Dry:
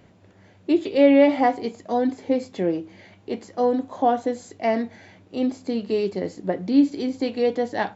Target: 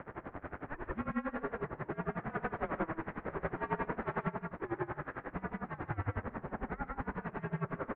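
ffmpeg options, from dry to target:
-filter_complex "[0:a]aeval=exprs='val(0)+0.5*0.0237*sgn(val(0))':c=same,lowshelf=f=190:g=-7.5,acompressor=threshold=-21dB:ratio=6,alimiter=limit=-23.5dB:level=0:latency=1:release=297,aeval=exprs='0.0668*(cos(1*acos(clip(val(0)/0.0668,-1,1)))-cos(1*PI/2))+0.0335*(cos(8*acos(clip(val(0)/0.0668,-1,1)))-cos(8*PI/2))':c=same,asettb=1/sr,asplit=3[a][b][c];[a]atrim=end=2.154[d];[b]atrim=start=2.15:end=4.24,asetpts=PTS-STARTPTS,afade=t=in:d=0.004:c=qsin,afade=t=out:st=2.086:d=0.004:c=qsin,aeval=exprs='0.0944*sin(PI/2*1.78*val(0)/0.0944)':c=same[e];[c]atrim=start=4.236[f];[d][e]acrossfade=d=0.004:c1=hsin:c2=qsin[g];[g][f]acrossfade=d=0.004:c1=qsin:c2=hsin,aecho=1:1:99.13|148.7:0.501|0.891,highpass=f=400:t=q:w=0.5412,highpass=f=400:t=q:w=1.307,lowpass=f=2.1k:t=q:w=0.5176,lowpass=f=2.1k:t=q:w=0.7071,lowpass=f=2.1k:t=q:w=1.932,afreqshift=-320,aeval=exprs='val(0)*pow(10,-21*(0.5-0.5*cos(2*PI*11*n/s))/20)':c=same,volume=-3.5dB"

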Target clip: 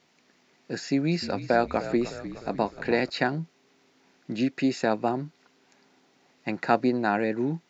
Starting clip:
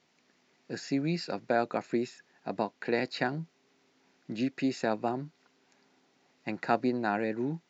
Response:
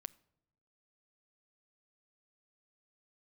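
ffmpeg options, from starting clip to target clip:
-filter_complex "[0:a]asettb=1/sr,asplit=3[a][b][c];[a]atrim=end=0.814[d];[b]atrim=start=0.81:end=3.1,asetpts=PTS-STARTPTS,afade=t=in:d=0.004:c=qsin,afade=t=out:st=2.286:d=0.004:c=qsin,asplit=7[e][f][g][h][i][j][k];[f]adelay=304,afreqshift=-47,volume=-13dB[l];[g]adelay=608,afreqshift=-94,volume=-17.9dB[m];[h]adelay=912,afreqshift=-141,volume=-22.8dB[n];[i]adelay=1216,afreqshift=-188,volume=-27.6dB[o];[j]adelay=1520,afreqshift=-235,volume=-32.5dB[p];[k]adelay=1824,afreqshift=-282,volume=-37.4dB[q];[e][l][m][n][o][p][q]amix=inputs=7:normalize=0,atrim=end_sample=100989[r];[c]atrim=start=3.096[s];[d][r]acrossfade=d=0.004:c1=hsin:c2=qsin[t];[t][s]acrossfade=d=0.004:c1=qsin:c2=hsin,volume=5dB"

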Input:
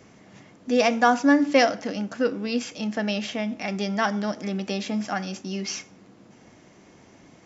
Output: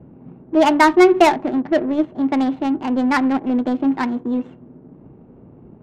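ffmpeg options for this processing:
-af "asetrate=56448,aresample=44100,bass=f=250:g=10,treble=f=4k:g=-13,adynamicsmooth=sensitivity=1.5:basefreq=600,volume=6dB"

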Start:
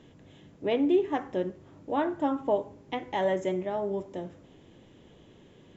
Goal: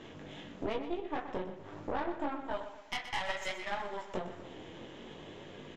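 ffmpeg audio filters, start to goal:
-filter_complex "[0:a]asettb=1/sr,asplit=3[a][b][c];[a]atrim=end=2.464[d];[b]atrim=start=2.46:end=4.14,asetpts=PTS-STARTPTS,afade=t=in:d=0.004:c=qsin,afade=t=out:st=1.676:d=0.004:c=qsin,highpass=1.4k[e];[c]atrim=start=4.136[f];[d][e]acrossfade=d=0.004:c1=hsin:c2=qsin[g];[g][f]acrossfade=d=0.004:c1=qsin:c2=hsin,acompressor=threshold=-41dB:ratio=16,flanger=delay=19.5:depth=3.8:speed=0.54,asplit=2[h][i];[i]highpass=f=720:p=1,volume=11dB,asoftclip=type=tanh:threshold=-31.5dB[j];[h][j]amix=inputs=2:normalize=0,lowpass=f=2.9k:p=1,volume=-6dB,flanger=delay=8.8:depth=8.5:regen=-36:speed=1.1:shape=sinusoidal,aeval=exprs='0.0211*(cos(1*acos(clip(val(0)/0.0211,-1,1)))-cos(1*PI/2))+0.00335*(cos(6*acos(clip(val(0)/0.0211,-1,1)))-cos(6*PI/2))':c=same,aecho=1:1:123|246|369|492|615:0.282|0.132|0.0623|0.0293|0.0138,volume=12dB"

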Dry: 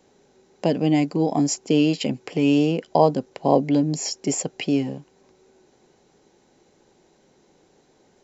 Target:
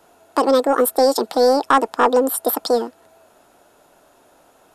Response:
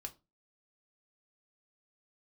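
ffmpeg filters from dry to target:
-af "asetrate=76440,aresample=44100,acontrast=73,volume=-1.5dB"

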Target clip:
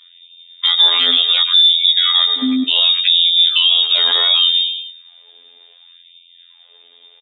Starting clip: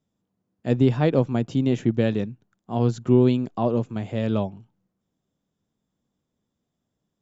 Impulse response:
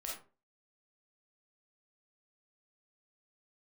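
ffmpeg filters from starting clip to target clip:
-filter_complex "[0:a]highpass=45,aecho=1:1:6.5:0.95,lowpass=f=3.2k:t=q:w=0.5098,lowpass=f=3.2k:t=q:w=0.6013,lowpass=f=3.2k:t=q:w=0.9,lowpass=f=3.2k:t=q:w=2.563,afreqshift=-3800,asettb=1/sr,asplit=3[a][b][c];[a]atrim=end=1.014[d];[b]atrim=start=1.01:end=3.05,asetpts=PTS-STARTPTS,afade=t=in:d=0.004:c=qsin,afade=t=out:st=2.036:d=0.004:c=qsin,aeval=exprs='val(0)+0.0224*(sin(2*PI*50*n/s)+sin(2*PI*2*50*n/s)/2+sin(2*PI*3*50*n/s)/3+sin(2*PI*4*50*n/s)/4+sin(2*PI*5*50*n/s)/5)':c=same[e];[c]atrim=start=3.046[f];[d][e]acrossfade=d=0.004:c1=hsin:c2=qsin[g];[g][f]acrossfade=d=0.004:c1=qsin:c2=hsin,afftfilt=real='hypot(re,im)*cos(PI*b)':imag='0':win_size=2048:overlap=0.75,acrossover=split=100|2700[h][i][j];[h]acompressor=threshold=-50dB:ratio=4[k];[i]acompressor=threshold=-31dB:ratio=4[l];[j]acompressor=threshold=-31dB:ratio=4[m];[k][l][m]amix=inputs=3:normalize=0,equalizer=f=460:t=o:w=2:g=11,aecho=1:1:107|214|321|428:0.133|0.064|0.0307|0.0147,acompressor=threshold=-37dB:ratio=12,alimiter=level_in=33dB:limit=-1dB:release=50:level=0:latency=1,afftfilt=real='re*gte(b*sr/1024,230*pow(2200/230,0.5+0.5*sin(2*PI*0.68*pts/sr)))':imag='im*gte(b*sr/1024,230*pow(2200/230,0.5+0.5*sin(2*PI*0.68*pts/sr)))':win_size=1024:overlap=0.75,volume=-1dB"

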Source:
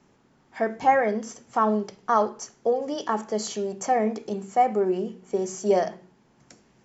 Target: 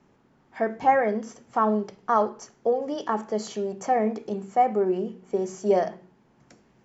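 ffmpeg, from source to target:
-af "highshelf=f=4.2k:g=-10"

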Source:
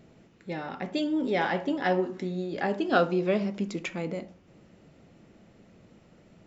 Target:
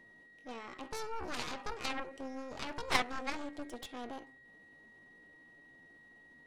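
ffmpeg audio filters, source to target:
-af "asetrate=64194,aresample=44100,atempo=0.686977,aeval=exprs='val(0)+0.00501*sin(2*PI*1900*n/s)':c=same,aeval=exprs='0.316*(cos(1*acos(clip(val(0)/0.316,-1,1)))-cos(1*PI/2))+0.0794*(cos(3*acos(clip(val(0)/0.316,-1,1)))-cos(3*PI/2))+0.02*(cos(4*acos(clip(val(0)/0.316,-1,1)))-cos(4*PI/2))+0.0282*(cos(7*acos(clip(val(0)/0.316,-1,1)))-cos(7*PI/2))+0.0141*(cos(8*acos(clip(val(0)/0.316,-1,1)))-cos(8*PI/2))':c=same,volume=-3dB"

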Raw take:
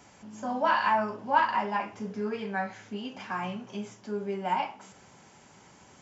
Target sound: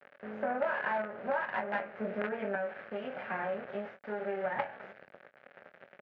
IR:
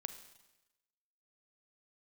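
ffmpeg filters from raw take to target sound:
-filter_complex "[0:a]asettb=1/sr,asplit=3[a][b][c];[a]atrim=end=2.554[d];[b]atrim=start=2.55:end=4.59,asetpts=PTS-STARTPTS,afade=t=in:d=0.004:c=qsin,afade=t=out:st=2.036:d=0.004:c=qsin,acrossover=split=310|1000[e][f][g];[e]acompressor=threshold=-50dB:ratio=4[h];[f]acompressor=threshold=-36dB:ratio=4[i];[g]acompressor=threshold=-45dB:ratio=4[j];[h][i][j]amix=inputs=3:normalize=0[k];[c]atrim=start=4.586[l];[d][k]acrossfade=d=0.004:c1=hsin:c2=qsin[m];[m][l]acrossfade=d=0.004:c1=qsin:c2=hsin,acrusher=bits=5:dc=4:mix=0:aa=0.000001,highpass=210,equalizer=f=300:t=q:w=4:g=-9,equalizer=f=570:t=q:w=4:g=9,equalizer=f=1k:t=q:w=4:g=-9,equalizer=f=1.6k:t=q:w=4:g=5,lowpass=f=2.1k:w=0.5412,lowpass=f=2.1k:w=1.3066,acompressor=threshold=-38dB:ratio=10,asplit=2[n][o];[o]adelay=23,volume=-10dB[p];[n][p]amix=inputs=2:normalize=0,volume=8dB"

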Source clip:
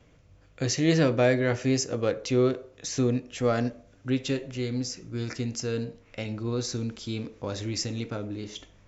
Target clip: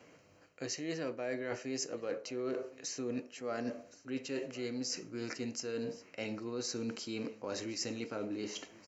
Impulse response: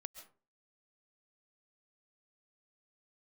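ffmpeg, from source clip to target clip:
-af "highpass=260,areverse,acompressor=threshold=-39dB:ratio=8,areverse,asuperstop=centerf=3500:order=4:qfactor=5.6,aecho=1:1:1067:0.1,volume=3.5dB"

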